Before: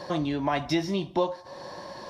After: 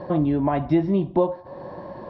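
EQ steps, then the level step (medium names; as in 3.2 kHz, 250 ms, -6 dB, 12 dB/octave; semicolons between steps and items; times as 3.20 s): distance through air 450 m; tilt shelf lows +9 dB, about 1.3 kHz; treble shelf 3 kHz +9.5 dB; 0.0 dB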